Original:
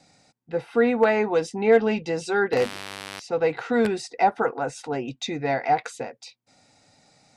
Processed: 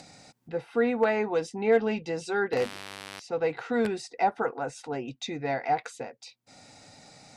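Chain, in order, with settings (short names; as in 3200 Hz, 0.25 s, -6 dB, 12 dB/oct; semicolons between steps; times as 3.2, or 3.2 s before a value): upward compressor, threshold -35 dBFS; gain -5 dB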